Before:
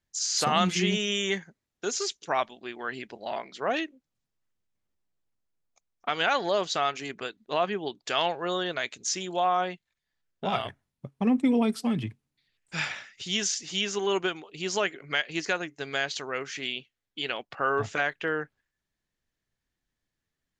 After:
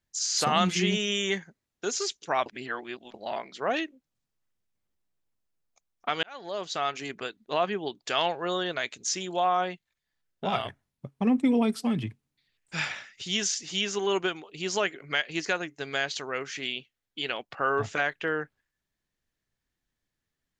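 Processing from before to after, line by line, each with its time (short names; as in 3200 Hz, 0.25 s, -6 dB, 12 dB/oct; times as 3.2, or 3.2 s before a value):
2.46–3.14 reverse
6.23–7.02 fade in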